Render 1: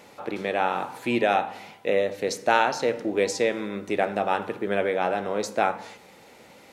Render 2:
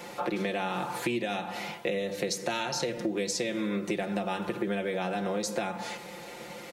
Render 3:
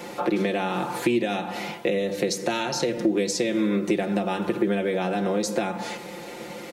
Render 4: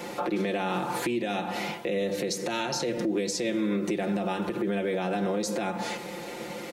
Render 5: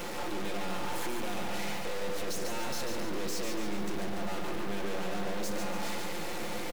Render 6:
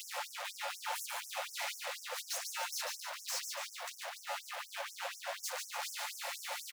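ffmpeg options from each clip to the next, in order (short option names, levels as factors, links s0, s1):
-filter_complex "[0:a]acrossover=split=270|3000[s0][s1][s2];[s1]acompressor=threshold=0.0251:ratio=6[s3];[s0][s3][s2]amix=inputs=3:normalize=0,aecho=1:1:5.7:0.76,acompressor=threshold=0.0224:ratio=6,volume=1.88"
-af "equalizer=f=300:w=1.1:g=6,volume=1.5"
-af "alimiter=limit=0.1:level=0:latency=1:release=96"
-af "volume=56.2,asoftclip=hard,volume=0.0178,acrusher=bits=6:dc=4:mix=0:aa=0.000001,aecho=1:1:143|286|429|572|715|858|1001:0.562|0.292|0.152|0.0791|0.0411|0.0214|0.0111,volume=1.78"
-af "afftfilt=real='re*gte(b*sr/1024,500*pow(5400/500,0.5+0.5*sin(2*PI*4.1*pts/sr)))':imag='im*gte(b*sr/1024,500*pow(5400/500,0.5+0.5*sin(2*PI*4.1*pts/sr)))':win_size=1024:overlap=0.75,volume=1.12"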